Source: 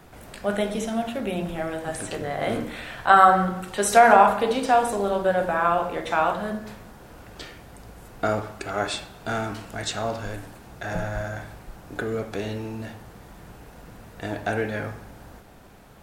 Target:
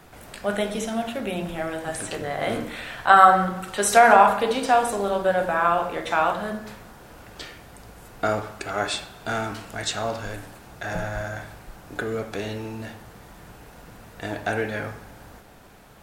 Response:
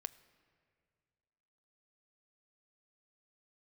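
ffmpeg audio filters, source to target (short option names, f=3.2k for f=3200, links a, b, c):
-filter_complex "[0:a]asplit=2[a][b];[1:a]atrim=start_sample=2205,asetrate=35721,aresample=44100,lowshelf=f=460:g=-11.5[c];[b][c]afir=irnorm=-1:irlink=0,volume=2dB[d];[a][d]amix=inputs=2:normalize=0,volume=-3.5dB"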